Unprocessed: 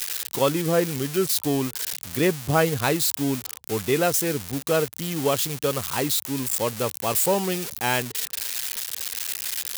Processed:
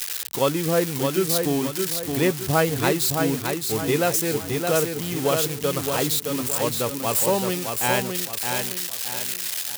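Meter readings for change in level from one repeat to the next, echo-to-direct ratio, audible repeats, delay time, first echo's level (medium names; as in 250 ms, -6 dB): -8.0 dB, -4.5 dB, 4, 617 ms, -5.0 dB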